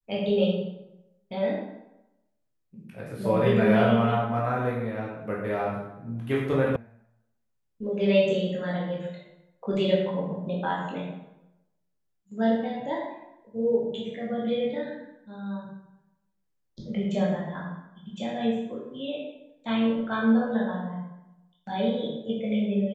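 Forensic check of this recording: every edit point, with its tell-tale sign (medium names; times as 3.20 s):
6.76 s: sound stops dead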